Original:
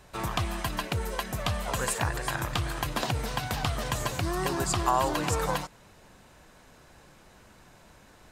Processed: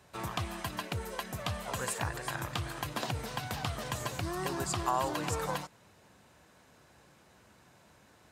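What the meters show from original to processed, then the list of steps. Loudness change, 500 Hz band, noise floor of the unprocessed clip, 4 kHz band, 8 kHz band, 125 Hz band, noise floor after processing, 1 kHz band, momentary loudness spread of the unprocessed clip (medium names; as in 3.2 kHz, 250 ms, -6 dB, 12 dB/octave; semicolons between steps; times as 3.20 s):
-5.5 dB, -5.5 dB, -56 dBFS, -5.5 dB, -5.5 dB, -6.0 dB, -62 dBFS, -5.5 dB, 6 LU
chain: high-pass 67 Hz 24 dB/octave; trim -5.5 dB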